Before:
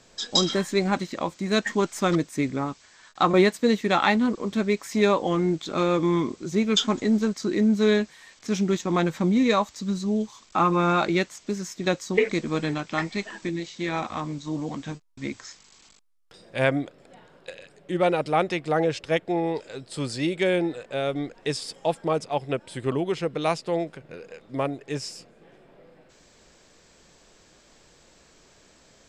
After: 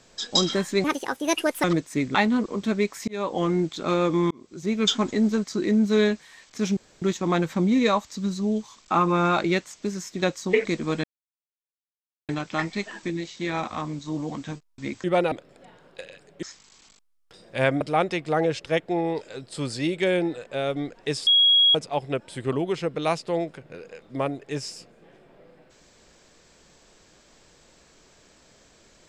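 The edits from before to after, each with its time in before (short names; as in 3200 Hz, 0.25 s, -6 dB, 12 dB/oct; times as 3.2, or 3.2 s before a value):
0.84–2.06 speed 153%
2.57–4.04 cut
4.97–5.3 fade in linear
6.2–6.74 fade in
8.66 insert room tone 0.25 s
12.68 insert silence 1.25 s
15.43–16.81 swap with 17.92–18.2
21.66–22.14 bleep 3310 Hz -14 dBFS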